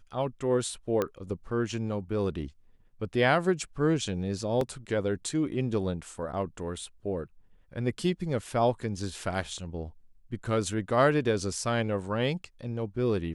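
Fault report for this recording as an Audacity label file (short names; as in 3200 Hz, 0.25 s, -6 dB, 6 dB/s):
1.020000	1.020000	pop -15 dBFS
4.610000	4.610000	gap 2.4 ms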